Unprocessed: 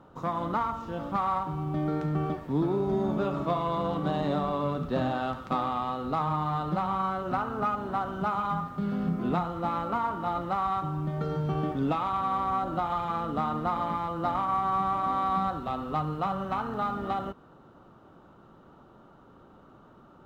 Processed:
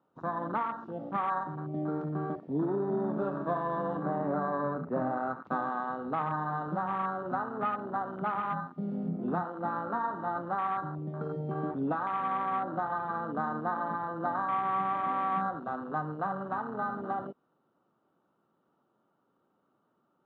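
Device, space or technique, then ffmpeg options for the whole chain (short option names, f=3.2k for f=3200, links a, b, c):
over-cleaned archive recording: -filter_complex "[0:a]asettb=1/sr,asplit=3[a][b][c];[a]atrim=end=4.024[d];[b]atrim=start=4.02:end=5.45,asetpts=PTS-STARTPTS,afade=t=in:d=0.004:c=qsin,afade=t=out:st=1.426:d=0.004:c=qsin,highshelf=f=2.6k:t=q:w=3:g=-10[e];[c]atrim=start=5.446[f];[d][e]acrossfade=d=0.004:c1=hsin:c2=qsin[g];[g][f]acrossfade=d=0.004:c1=qsin:c2=hsin,highpass=170,lowpass=5k,bandreject=f=50:t=h:w=6,bandreject=f=100:t=h:w=6,afwtdn=0.0251,volume=-2.5dB"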